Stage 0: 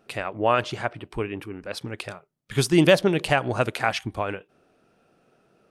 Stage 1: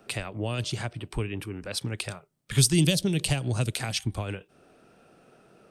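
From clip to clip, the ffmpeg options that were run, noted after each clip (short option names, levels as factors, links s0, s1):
-filter_complex "[0:a]acrossover=split=510|3100[s0][s1][s2];[s1]acompressor=threshold=0.0251:ratio=6[s3];[s0][s3][s2]amix=inputs=3:normalize=0,equalizer=f=8500:w=8:g=7,acrossover=split=170|3000[s4][s5][s6];[s5]acompressor=threshold=0.00398:ratio=2[s7];[s4][s7][s6]amix=inputs=3:normalize=0,volume=1.88"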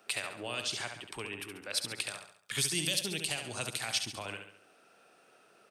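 -af "highpass=f=1200:p=1,alimiter=limit=0.119:level=0:latency=1:release=138,aecho=1:1:69|138|207|276|345:0.447|0.201|0.0905|0.0407|0.0183"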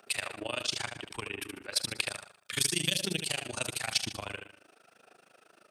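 -af "aphaser=in_gain=1:out_gain=1:delay=3.4:decay=0.28:speed=0.98:type=sinusoidal,tremolo=f=26:d=0.947,volume=1.88"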